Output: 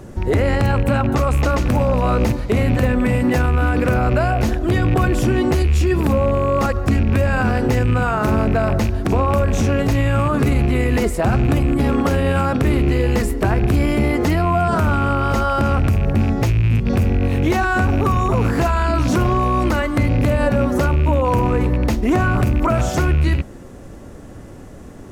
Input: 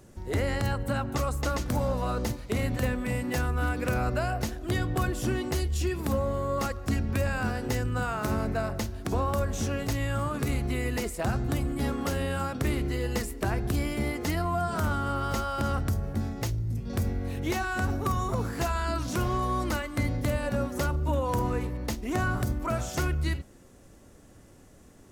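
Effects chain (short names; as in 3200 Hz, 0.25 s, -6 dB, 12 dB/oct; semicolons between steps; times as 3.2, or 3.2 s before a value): rattling part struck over -30 dBFS, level -31 dBFS; high shelf 2700 Hz -10.5 dB; maximiser +25 dB; gain -8 dB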